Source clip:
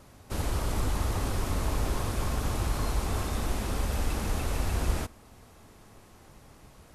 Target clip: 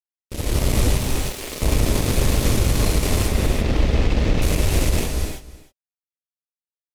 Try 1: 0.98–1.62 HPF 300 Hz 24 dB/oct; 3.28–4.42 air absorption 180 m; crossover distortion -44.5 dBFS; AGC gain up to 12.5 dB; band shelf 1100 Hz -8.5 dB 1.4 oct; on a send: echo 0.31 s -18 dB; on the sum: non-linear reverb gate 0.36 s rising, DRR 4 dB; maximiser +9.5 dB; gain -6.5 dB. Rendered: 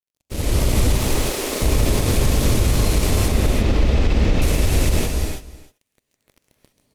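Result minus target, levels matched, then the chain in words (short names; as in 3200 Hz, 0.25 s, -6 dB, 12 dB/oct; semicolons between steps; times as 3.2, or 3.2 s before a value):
crossover distortion: distortion -9 dB
0.98–1.62 HPF 300 Hz 24 dB/oct; 3.28–4.42 air absorption 180 m; crossover distortion -34.5 dBFS; AGC gain up to 12.5 dB; band shelf 1100 Hz -8.5 dB 1.4 oct; on a send: echo 0.31 s -18 dB; on the sum: non-linear reverb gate 0.36 s rising, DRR 4 dB; maximiser +9.5 dB; gain -6.5 dB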